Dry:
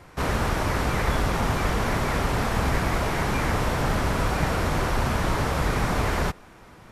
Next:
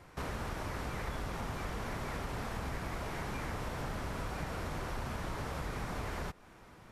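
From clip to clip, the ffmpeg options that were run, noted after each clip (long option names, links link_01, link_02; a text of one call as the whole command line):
ffmpeg -i in.wav -af "acompressor=threshold=-31dB:ratio=2.5,volume=-7.5dB" out.wav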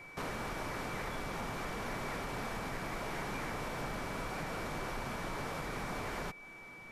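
ffmpeg -i in.wav -af "equalizer=frequency=65:width=1.2:gain=-14.5,aeval=exprs='val(0)+0.00251*sin(2*PI*2300*n/s)':channel_layout=same,asoftclip=type=tanh:threshold=-30dB,volume=2dB" out.wav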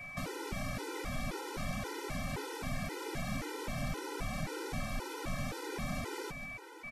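ffmpeg -i in.wav -filter_complex "[0:a]acrossover=split=440|3000[link_01][link_02][link_03];[link_02]acompressor=threshold=-47dB:ratio=6[link_04];[link_01][link_04][link_03]amix=inputs=3:normalize=0,asplit=2[link_05][link_06];[link_06]aecho=0:1:147|513:0.282|0.158[link_07];[link_05][link_07]amix=inputs=2:normalize=0,afftfilt=real='re*gt(sin(2*PI*1.9*pts/sr)*(1-2*mod(floor(b*sr/1024/260),2)),0)':imag='im*gt(sin(2*PI*1.9*pts/sr)*(1-2*mod(floor(b*sr/1024/260),2)),0)':win_size=1024:overlap=0.75,volume=6dB" out.wav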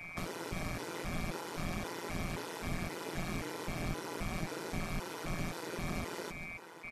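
ffmpeg -i in.wav -af "tremolo=f=170:d=0.919,volume=3.5dB" out.wav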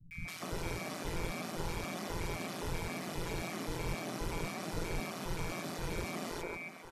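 ffmpeg -i in.wav -filter_complex "[0:a]acrossover=split=180|1600[link_01][link_02][link_03];[link_03]adelay=110[link_04];[link_02]adelay=250[link_05];[link_01][link_05][link_04]amix=inputs=3:normalize=0,volume=1.5dB" out.wav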